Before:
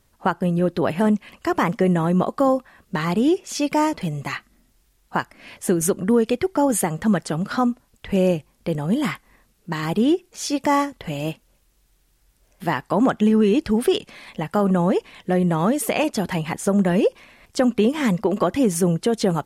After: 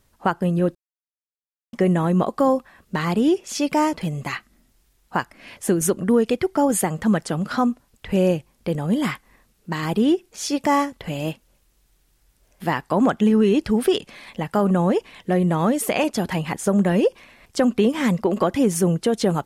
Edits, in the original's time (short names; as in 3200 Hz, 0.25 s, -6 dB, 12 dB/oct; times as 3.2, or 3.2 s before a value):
0.75–1.73 mute